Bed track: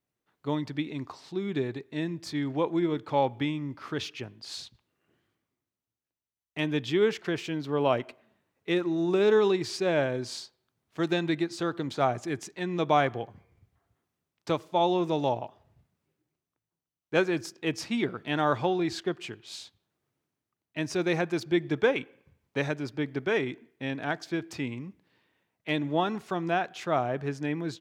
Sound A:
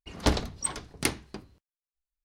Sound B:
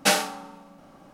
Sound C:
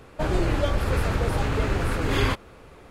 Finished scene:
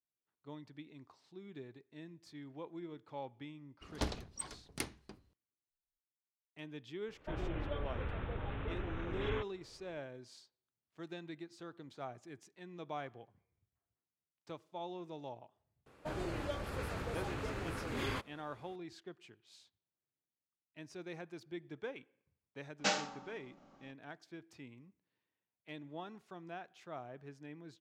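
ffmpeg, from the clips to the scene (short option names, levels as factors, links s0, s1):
-filter_complex "[3:a]asplit=2[s0][s1];[0:a]volume=0.106[s2];[s0]aresample=8000,aresample=44100[s3];[s1]highpass=f=120:p=1[s4];[2:a]aresample=16000,aresample=44100[s5];[1:a]atrim=end=2.24,asetpts=PTS-STARTPTS,volume=0.237,afade=t=in:d=0.004:c=hsin,afade=t=out:st=2.236:d=0.004:c=hsin,adelay=3750[s6];[s3]atrim=end=2.9,asetpts=PTS-STARTPTS,volume=0.15,afade=t=in:d=0.004:c=hsin,afade=t=out:st=2.896:d=0.004:c=hsin,adelay=7080[s7];[s4]atrim=end=2.9,asetpts=PTS-STARTPTS,volume=0.211,afade=t=in:d=0.004:c=hsin,afade=t=out:st=2.896:d=0.004:c=hsin,adelay=15860[s8];[s5]atrim=end=1.13,asetpts=PTS-STARTPTS,volume=0.251,afade=t=in:d=0.004:c=hsin,afade=t=out:st=1.126:d=0.004:c=hsin,adelay=22790[s9];[s2][s6][s7][s8][s9]amix=inputs=5:normalize=0"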